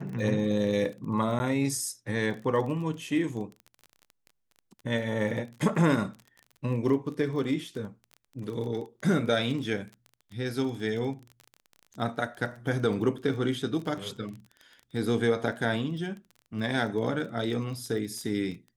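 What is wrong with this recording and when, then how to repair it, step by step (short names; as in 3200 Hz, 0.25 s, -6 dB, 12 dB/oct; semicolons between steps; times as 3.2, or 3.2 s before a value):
crackle 20/s -36 dBFS
1.39–1.4 gap 10 ms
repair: de-click; interpolate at 1.39, 10 ms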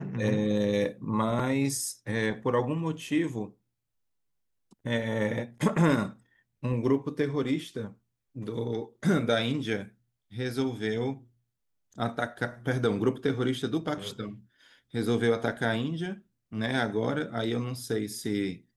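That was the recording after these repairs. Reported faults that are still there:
none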